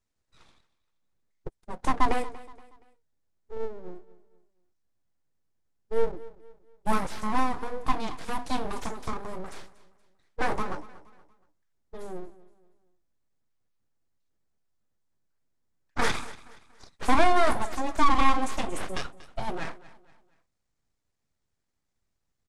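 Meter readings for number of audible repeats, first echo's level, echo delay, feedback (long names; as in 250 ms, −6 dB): 2, −18.5 dB, 236 ms, 38%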